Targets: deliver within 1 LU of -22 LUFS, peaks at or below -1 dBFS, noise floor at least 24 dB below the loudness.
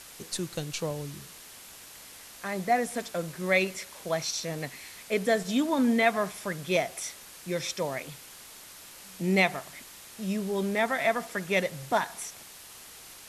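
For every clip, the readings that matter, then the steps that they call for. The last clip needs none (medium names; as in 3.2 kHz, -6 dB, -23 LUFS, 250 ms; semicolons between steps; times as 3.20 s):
noise floor -48 dBFS; noise floor target -54 dBFS; loudness -29.5 LUFS; peak level -9.5 dBFS; loudness target -22.0 LUFS
-> noise reduction 6 dB, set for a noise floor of -48 dBFS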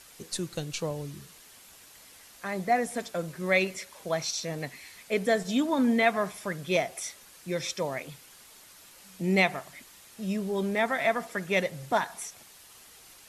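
noise floor -53 dBFS; noise floor target -54 dBFS
-> noise reduction 6 dB, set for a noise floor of -53 dBFS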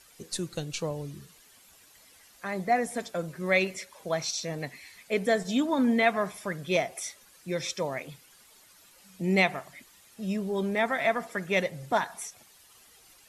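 noise floor -58 dBFS; loudness -29.5 LUFS; peak level -9.5 dBFS; loudness target -22.0 LUFS
-> trim +7.5 dB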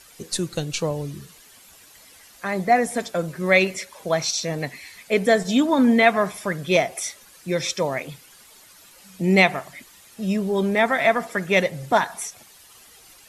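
loudness -22.0 LUFS; peak level -2.0 dBFS; noise floor -50 dBFS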